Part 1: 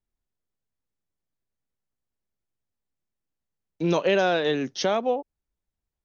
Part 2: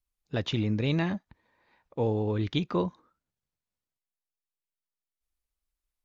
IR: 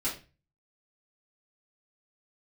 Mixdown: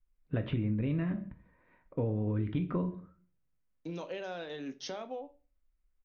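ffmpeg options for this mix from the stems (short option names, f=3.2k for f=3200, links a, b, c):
-filter_complex "[0:a]acompressor=threshold=-31dB:ratio=3,adelay=50,volume=-10.5dB,asplit=2[a][b];[b]volume=-12.5dB[c];[1:a]lowpass=f=2.4k:w=0.5412,lowpass=f=2.4k:w=1.3066,lowshelf=f=180:g=9,bandreject=f=830:w=5.2,volume=-2dB,asplit=2[d][e];[e]volume=-9.5dB[f];[2:a]atrim=start_sample=2205[g];[c][f]amix=inputs=2:normalize=0[h];[h][g]afir=irnorm=-1:irlink=0[i];[a][d][i]amix=inputs=3:normalize=0,acompressor=threshold=-29dB:ratio=6"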